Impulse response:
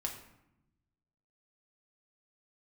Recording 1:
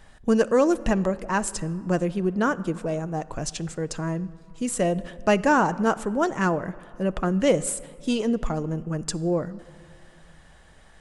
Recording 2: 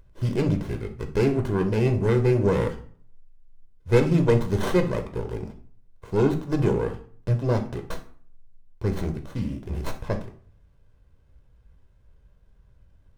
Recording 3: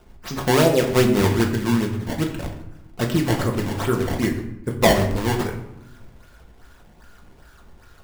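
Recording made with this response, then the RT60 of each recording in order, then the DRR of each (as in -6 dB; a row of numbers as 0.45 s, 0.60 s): 3; 2.5 s, 0.50 s, 0.85 s; 13.5 dB, 5.0 dB, 0.5 dB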